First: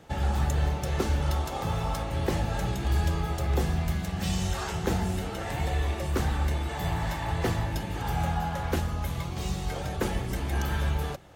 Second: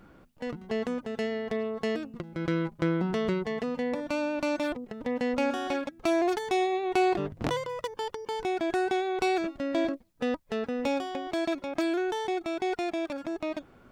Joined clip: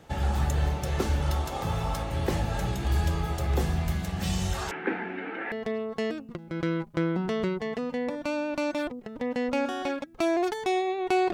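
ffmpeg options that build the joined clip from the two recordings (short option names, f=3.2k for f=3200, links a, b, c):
-filter_complex "[0:a]asettb=1/sr,asplit=3[a][b][c];[a]atrim=end=4.714[d];[b]atrim=start=4.71:end=5.52,asetpts=PTS-STARTPTS,afade=t=in:d=0.004:c=qsin,afade=t=out:st=0.806:d=0.004:c=qsin,highpass=f=260:w=0.5412,highpass=f=260:w=1.3066,equalizer=f=280:t=q:w=4:g=8,equalizer=f=620:t=q:w=4:g=-8,equalizer=f=1.1k:t=q:w=4:g=-5,equalizer=f=1.6k:t=q:w=4:g=9,equalizer=f=2.3k:t=q:w=4:g=9,lowpass=f=2.4k:w=0.5412,lowpass=f=2.4k:w=1.3066[e];[c]atrim=start=5.516[f];[d][e]acrossfade=d=0.004:c1=hsin:c2=qsin[g];[g][f]acrossfade=d=0.004:c1=qsin:c2=hsin,apad=whole_dur=11.33,atrim=end=11.33,atrim=end=5.522[h];[1:a]atrim=start=1.368:end=7.18[i];[h][i]acrossfade=d=0.004:c1=hsin:c2=hsin"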